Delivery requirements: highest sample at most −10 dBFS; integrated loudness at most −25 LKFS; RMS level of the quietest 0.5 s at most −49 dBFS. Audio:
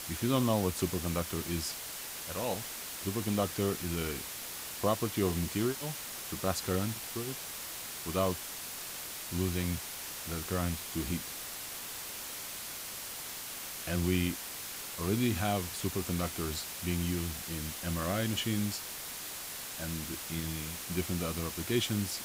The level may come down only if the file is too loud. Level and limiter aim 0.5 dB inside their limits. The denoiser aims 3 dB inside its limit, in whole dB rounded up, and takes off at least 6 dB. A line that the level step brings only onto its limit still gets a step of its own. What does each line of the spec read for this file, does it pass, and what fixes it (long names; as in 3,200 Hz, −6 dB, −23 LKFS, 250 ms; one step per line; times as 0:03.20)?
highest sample −16.0 dBFS: in spec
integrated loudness −34.5 LKFS: in spec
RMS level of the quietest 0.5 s −42 dBFS: out of spec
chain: broadband denoise 10 dB, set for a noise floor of −42 dBFS